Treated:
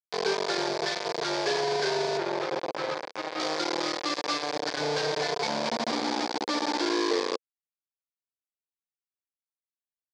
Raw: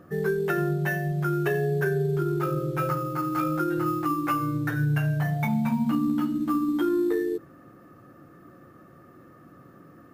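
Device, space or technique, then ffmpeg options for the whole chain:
hand-held game console: -filter_complex "[0:a]acrusher=bits=3:mix=0:aa=0.000001,highpass=460,equalizer=f=480:t=q:w=4:g=5,equalizer=f=1.3k:t=q:w=4:g=-10,equalizer=f=1.9k:t=q:w=4:g=-5,equalizer=f=2.8k:t=q:w=4:g=-9,equalizer=f=4.7k:t=q:w=4:g=6,lowpass=f=5.8k:w=0.5412,lowpass=f=5.8k:w=1.3066,asettb=1/sr,asplit=3[a][b][c];[a]atrim=end=2.174[d];[b]atrim=start=2.17:end=3.4,asetpts=PTS-STARTPTS,afade=t=in:d=0.004:c=qsin,afade=t=out:st=1.226:d=0.004:c=qsin,acrossover=split=2900[e][f];[f]acompressor=threshold=-44dB:ratio=4:attack=1:release=60[g];[e][g]amix=inputs=2:normalize=0[h];[c]atrim=start=3.396[i];[d][h]acrossfade=d=0.004:c1=hsin:c2=qsin[j];[j][i]acrossfade=d=0.004:c1=qsin:c2=hsin"

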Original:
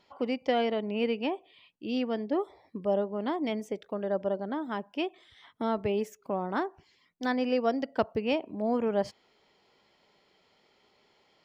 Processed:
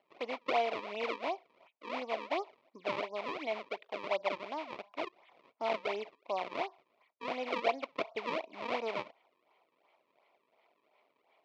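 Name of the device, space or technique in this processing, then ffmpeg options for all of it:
circuit-bent sampling toy: -af "acrusher=samples=35:mix=1:aa=0.000001:lfo=1:lforange=56:lforate=2.8,highpass=480,equalizer=f=670:t=q:w=4:g=8,equalizer=f=1k:t=q:w=4:g=7,equalizer=f=1.6k:t=q:w=4:g=-9,equalizer=f=2.3k:t=q:w=4:g=9,lowpass=f=4.2k:w=0.5412,lowpass=f=4.2k:w=1.3066,volume=-5.5dB"

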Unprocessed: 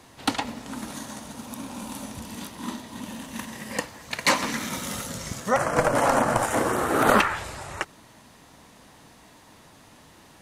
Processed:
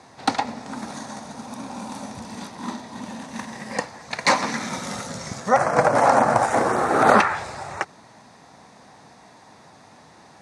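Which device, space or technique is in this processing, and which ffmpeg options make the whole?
car door speaker: -af "highpass=110,equalizer=f=300:t=q:w=4:g=-4,equalizer=f=770:t=q:w=4:g=6,equalizer=f=3k:t=q:w=4:g=-10,equalizer=f=7.4k:t=q:w=4:g=-5,lowpass=f=8.3k:w=0.5412,lowpass=f=8.3k:w=1.3066,volume=3dB"

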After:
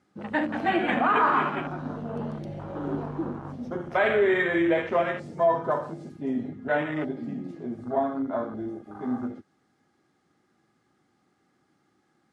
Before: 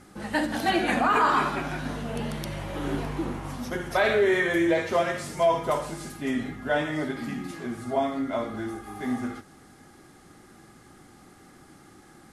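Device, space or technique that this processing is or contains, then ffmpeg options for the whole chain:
over-cleaned archive recording: -af "highpass=110,lowpass=6.1k,afwtdn=0.0224"

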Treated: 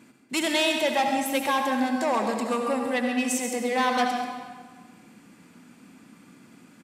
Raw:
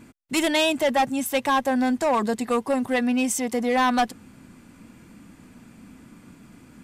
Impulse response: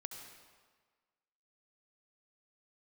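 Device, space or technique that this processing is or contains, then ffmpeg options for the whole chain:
PA in a hall: -filter_complex "[0:a]highpass=170,equalizer=f=3.8k:t=o:w=2.5:g=3,aecho=1:1:137:0.266[a];[1:a]atrim=start_sample=2205[b];[a][b]afir=irnorm=-1:irlink=0"

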